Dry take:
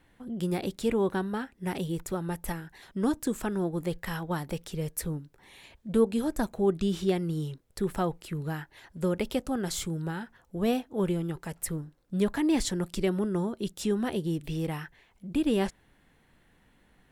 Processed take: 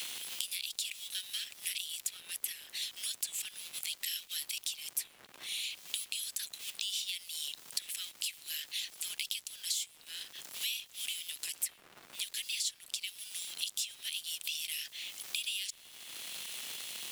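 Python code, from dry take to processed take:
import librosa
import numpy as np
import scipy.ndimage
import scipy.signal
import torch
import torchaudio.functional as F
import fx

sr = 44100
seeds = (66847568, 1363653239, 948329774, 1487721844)

p1 = fx.law_mismatch(x, sr, coded='mu')
p2 = scipy.signal.sosfilt(scipy.signal.butter(6, 2700.0, 'highpass', fs=sr, output='sos'), p1)
p3 = fx.rider(p2, sr, range_db=5, speed_s=0.5)
p4 = p2 + (p3 * 10.0 ** (0.0 / 20.0))
p5 = fx.dmg_crackle(p4, sr, seeds[0], per_s=270.0, level_db=-47.0)
y = fx.band_squash(p5, sr, depth_pct=100)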